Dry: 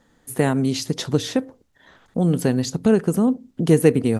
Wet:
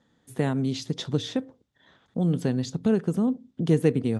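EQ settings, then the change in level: band-pass 110–7300 Hz; bass shelf 150 Hz +11 dB; peaking EQ 3.5 kHz +7 dB 0.23 oct; -8.5 dB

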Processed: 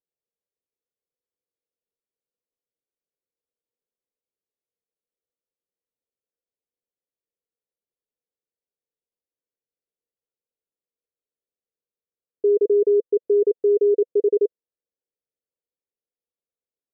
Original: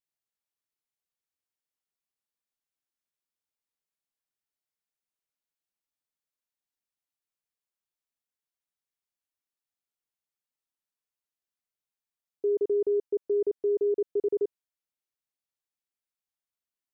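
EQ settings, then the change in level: resonant low-pass 480 Hz, resonance Q 4.9; -1.5 dB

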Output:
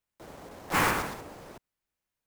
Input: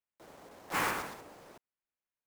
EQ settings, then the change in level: bass shelf 160 Hz +10 dB; +6.0 dB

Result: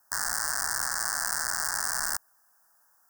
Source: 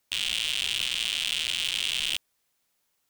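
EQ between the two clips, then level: elliptic band-stop 1.7–5 kHz, stop band 40 dB; high-order bell 1.1 kHz +15 dB; treble shelf 5.8 kHz +11.5 dB; 0.0 dB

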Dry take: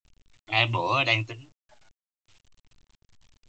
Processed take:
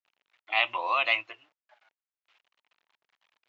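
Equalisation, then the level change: Butterworth band-pass 1.4 kHz, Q 0.64; band-stop 920 Hz, Q 16; 0.0 dB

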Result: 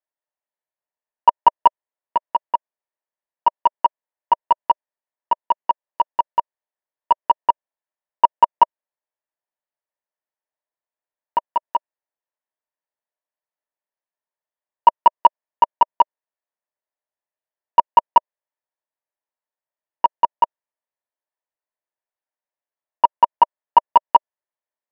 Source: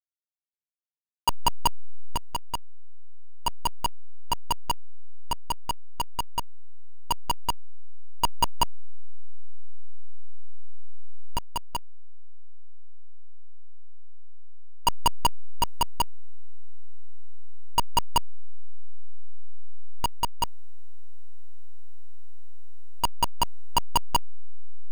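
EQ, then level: cabinet simulation 460–3100 Hz, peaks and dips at 610 Hz +9 dB, 940 Hz +9 dB, 1.8 kHz +9 dB; tilt shelf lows +7 dB, about 1.2 kHz; +2.0 dB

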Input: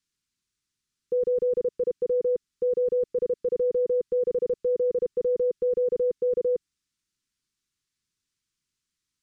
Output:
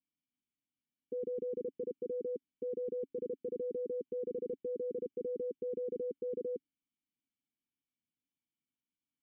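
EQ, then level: dynamic bell 380 Hz, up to +5 dB, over -37 dBFS, Q 1; cascade formant filter i; bass shelf 72 Hz -12 dB; +2.5 dB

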